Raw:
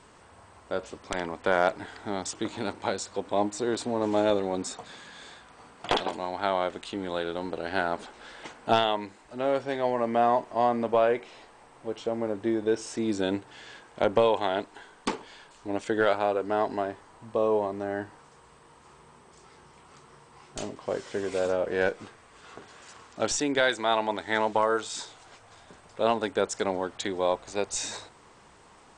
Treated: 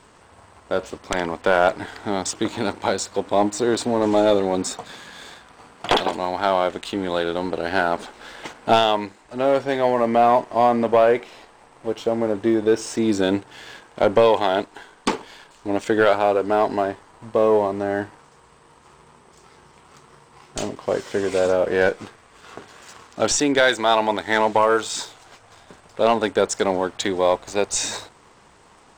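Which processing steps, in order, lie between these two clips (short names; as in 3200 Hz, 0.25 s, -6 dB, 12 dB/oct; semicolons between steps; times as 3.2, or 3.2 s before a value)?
sample leveller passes 1; gain +4.5 dB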